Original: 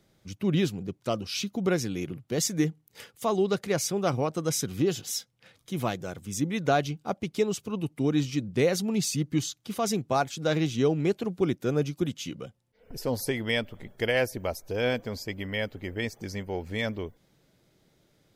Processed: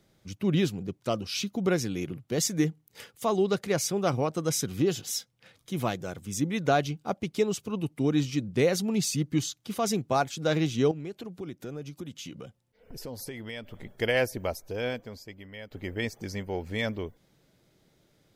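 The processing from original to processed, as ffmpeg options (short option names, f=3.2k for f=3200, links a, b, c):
-filter_complex "[0:a]asettb=1/sr,asplit=3[a][b][c];[a]atrim=end=10.914[d];[b]atrim=start=10.91:end=13.73,asetpts=PTS-STARTPTS,afade=t=in:d=0.004:c=qsin,afade=t=out:st=2.816:d=0.004:c=qsin,acompressor=threshold=-38dB:ratio=3:attack=3.2:release=140:knee=1:detection=peak[e];[c]atrim=start=13.726[f];[d][e]acrossfade=d=0.004:c1=hsin:c2=qsin[g];[g][f]acrossfade=d=0.004:c1=qsin:c2=hsin,asplit=2[h][i];[h]atrim=end=15.71,asetpts=PTS-STARTPTS,afade=t=out:st=14.47:d=1.24:c=qua:silence=0.223872[j];[i]atrim=start=15.71,asetpts=PTS-STARTPTS,afade=t=in:d=0.004:c=hsin:silence=0.223872[k];[j][k]concat=n=2:v=0:a=1"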